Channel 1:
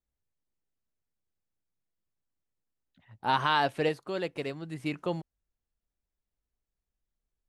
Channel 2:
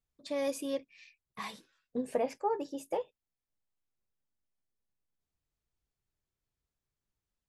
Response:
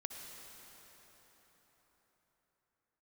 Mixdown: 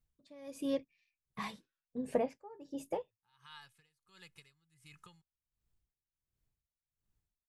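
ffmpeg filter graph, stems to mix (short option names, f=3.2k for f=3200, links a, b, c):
-filter_complex "[0:a]aecho=1:1:2.4:0.53,acompressor=threshold=-31dB:ratio=16,firequalizer=gain_entry='entry(190,0);entry(270,-18);entry(700,-20);entry(1000,-2);entry(7800,11)':delay=0.05:min_phase=1,volume=-11.5dB[a];[1:a]bass=f=250:g=9,treble=f=4k:g=-3,volume=-0.5dB,asplit=2[b][c];[c]apad=whole_len=334577[d];[a][d]sidechaincompress=threshold=-42dB:ratio=6:attack=16:release=686[e];[e][b]amix=inputs=2:normalize=0,aeval=exprs='val(0)*pow(10,-21*(0.5-0.5*cos(2*PI*1.4*n/s))/20)':c=same"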